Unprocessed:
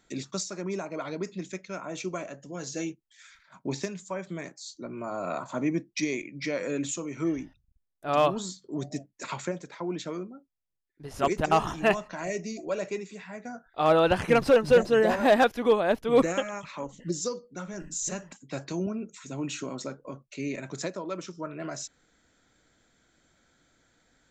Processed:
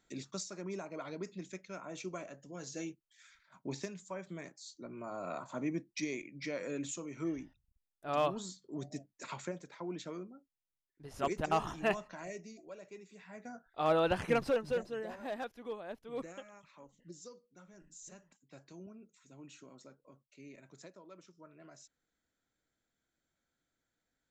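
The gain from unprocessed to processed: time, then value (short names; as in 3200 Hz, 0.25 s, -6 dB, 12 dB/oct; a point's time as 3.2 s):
12.06 s -8.5 dB
12.82 s -20 dB
13.4 s -8 dB
14.3 s -8 dB
15.07 s -20 dB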